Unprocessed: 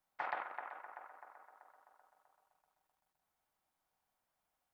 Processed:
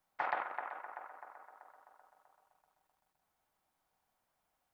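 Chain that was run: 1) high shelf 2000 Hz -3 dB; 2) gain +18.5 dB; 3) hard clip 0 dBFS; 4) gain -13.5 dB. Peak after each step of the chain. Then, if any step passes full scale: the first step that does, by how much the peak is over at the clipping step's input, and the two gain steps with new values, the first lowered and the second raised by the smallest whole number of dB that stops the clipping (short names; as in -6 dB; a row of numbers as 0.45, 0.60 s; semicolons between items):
-23.5, -5.0, -5.0, -18.5 dBFS; no overload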